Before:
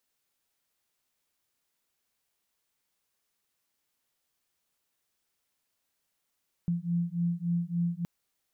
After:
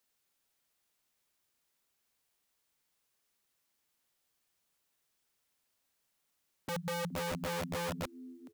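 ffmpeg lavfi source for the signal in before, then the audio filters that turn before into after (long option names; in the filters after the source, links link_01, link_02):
-f lavfi -i "aevalsrc='0.0316*(sin(2*PI*170*t)+sin(2*PI*173.5*t))':duration=1.37:sample_rate=44100"
-filter_complex "[0:a]acrossover=split=120|220[link_01][link_02][link_03];[link_02]acompressor=threshold=-43dB:ratio=8[link_04];[link_01][link_04][link_03]amix=inputs=3:normalize=0,asplit=4[link_05][link_06][link_07][link_08];[link_06]adelay=421,afreqshift=84,volume=-15.5dB[link_09];[link_07]adelay=842,afreqshift=168,volume=-25.4dB[link_10];[link_08]adelay=1263,afreqshift=252,volume=-35.3dB[link_11];[link_05][link_09][link_10][link_11]amix=inputs=4:normalize=0,aeval=exprs='(mod(42.2*val(0)+1,2)-1)/42.2':channel_layout=same"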